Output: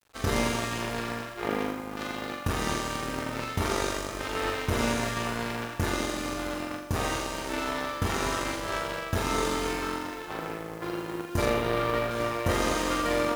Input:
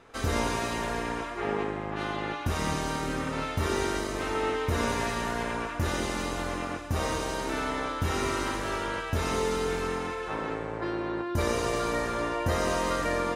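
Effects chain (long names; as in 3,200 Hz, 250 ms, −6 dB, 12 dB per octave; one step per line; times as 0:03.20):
0:11.45–0:12.11: Butterworth low-pass 3,800 Hz
bit reduction 8 bits
harmonic generator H 3 −19 dB, 5 −11 dB, 7 −12 dB, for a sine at −13 dBFS
on a send: flutter between parallel walls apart 7.3 metres, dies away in 0.6 s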